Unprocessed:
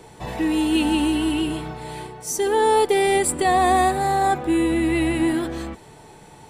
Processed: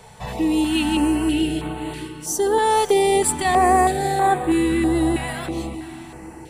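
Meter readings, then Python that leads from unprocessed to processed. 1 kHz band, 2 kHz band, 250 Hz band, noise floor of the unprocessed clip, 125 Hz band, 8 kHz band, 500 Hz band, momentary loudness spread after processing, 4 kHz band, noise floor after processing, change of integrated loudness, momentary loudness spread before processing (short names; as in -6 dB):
+1.0 dB, 0.0 dB, +1.0 dB, -46 dBFS, +2.0 dB, +2.0 dB, +0.5 dB, 14 LU, +0.5 dB, -40 dBFS, +0.5 dB, 15 LU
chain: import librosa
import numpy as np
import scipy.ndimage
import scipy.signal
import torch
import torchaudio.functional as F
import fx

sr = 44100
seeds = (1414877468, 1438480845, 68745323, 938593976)

p1 = x + fx.echo_diffused(x, sr, ms=515, feedback_pct=41, wet_db=-13.0, dry=0)
p2 = fx.filter_held_notch(p1, sr, hz=3.1, low_hz=320.0, high_hz=5400.0)
y = p2 * 10.0 ** (2.0 / 20.0)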